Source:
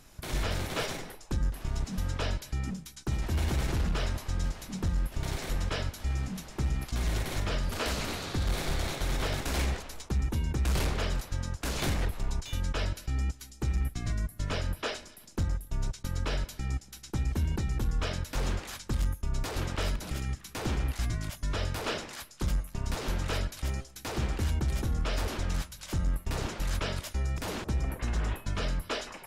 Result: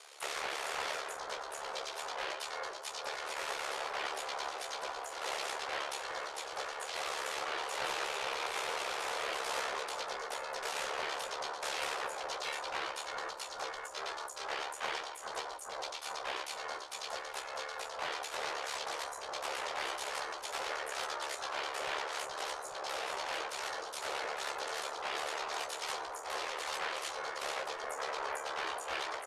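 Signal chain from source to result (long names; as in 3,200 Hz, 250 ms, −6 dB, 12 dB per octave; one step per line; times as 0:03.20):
elliptic high-pass filter 730 Hz, stop band 50 dB
in parallel at −2 dB: compressor whose output falls as the input rises −43 dBFS, ratio −1
on the sum: gain into a clipping stage and back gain 29 dB
pitch-shifted copies added +4 semitones −5 dB, +7 semitones −4 dB, +12 semitones −16 dB
ring modulation 59 Hz
soft clipping −29 dBFS, distortion −18 dB
pitch shifter −8.5 semitones
double-tracking delay 15 ms −7 dB
on a send: bucket-brigade delay 421 ms, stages 4,096, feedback 76%, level −5 dB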